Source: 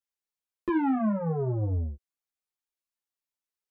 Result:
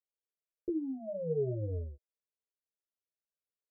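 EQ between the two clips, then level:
Chebyshev low-pass with heavy ripple 640 Hz, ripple 6 dB
low-shelf EQ 110 Hz −9.5 dB
phaser with its sweep stopped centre 500 Hz, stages 4
+3.0 dB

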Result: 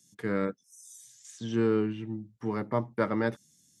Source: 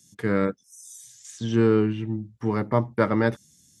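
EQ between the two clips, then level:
high-pass filter 120 Hz
−6.0 dB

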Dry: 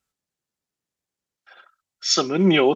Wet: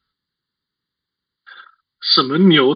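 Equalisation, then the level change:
linear-phase brick-wall low-pass 4,900 Hz
high-shelf EQ 2,100 Hz +7.5 dB
phaser with its sweep stopped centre 2,500 Hz, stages 6
+7.5 dB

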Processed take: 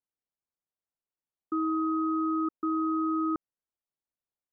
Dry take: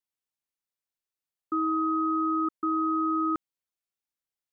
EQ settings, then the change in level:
low-pass filter 1,100 Hz 12 dB per octave
0.0 dB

